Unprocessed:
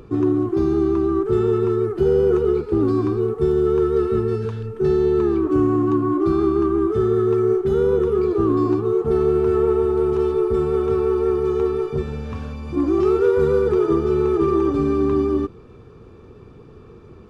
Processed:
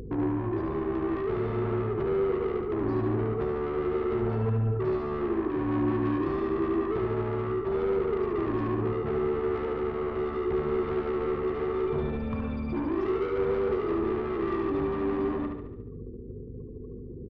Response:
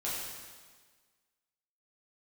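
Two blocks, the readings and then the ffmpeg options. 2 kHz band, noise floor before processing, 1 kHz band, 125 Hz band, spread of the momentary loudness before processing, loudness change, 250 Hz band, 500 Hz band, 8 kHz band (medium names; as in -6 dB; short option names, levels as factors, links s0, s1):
-1.5 dB, -44 dBFS, -5.5 dB, -6.5 dB, 4 LU, -9.5 dB, -9.5 dB, -10.0 dB, no reading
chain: -af "afftfilt=real='re*gte(hypot(re,im),0.0126)':imag='im*gte(hypot(re,im),0.0126)':win_size=1024:overlap=0.75,acompressor=threshold=0.0891:ratio=8,asoftclip=type=tanh:threshold=0.0447,aeval=exprs='val(0)+0.00794*(sin(2*PI*50*n/s)+sin(2*PI*2*50*n/s)/2+sin(2*PI*3*50*n/s)/3+sin(2*PI*4*50*n/s)/4+sin(2*PI*5*50*n/s)/5)':c=same,aecho=1:1:72|144|216|288|360|432|504:0.596|0.322|0.174|0.0938|0.0506|0.0274|0.0148"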